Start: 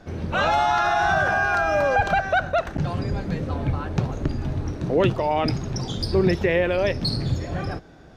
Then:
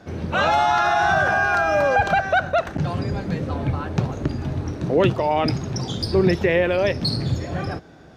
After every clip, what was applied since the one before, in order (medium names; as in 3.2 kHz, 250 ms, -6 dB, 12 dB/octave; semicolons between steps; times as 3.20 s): high-pass 72 Hz; trim +2 dB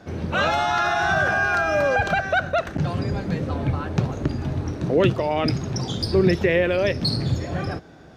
dynamic bell 860 Hz, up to -6 dB, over -34 dBFS, Q 2.3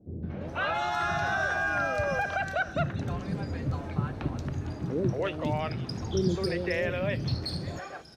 three bands offset in time lows, mids, highs 230/410 ms, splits 460/3800 Hz; trim -7 dB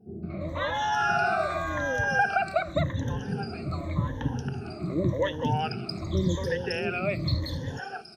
drifting ripple filter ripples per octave 1.1, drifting -0.88 Hz, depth 21 dB; trim -2 dB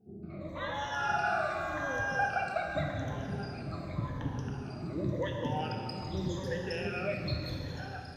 plate-style reverb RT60 2.8 s, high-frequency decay 0.8×, DRR 1 dB; trim -8.5 dB